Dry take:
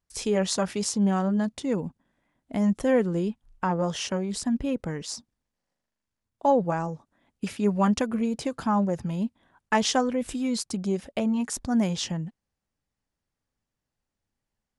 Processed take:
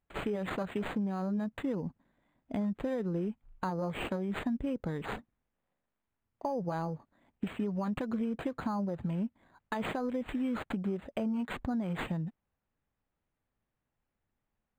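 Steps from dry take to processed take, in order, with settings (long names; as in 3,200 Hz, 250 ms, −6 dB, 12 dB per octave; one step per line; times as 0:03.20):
brickwall limiter −18.5 dBFS, peak gain reduction 10.5 dB
downward compressor, threshold −30 dBFS, peak gain reduction 8.5 dB
linearly interpolated sample-rate reduction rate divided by 8×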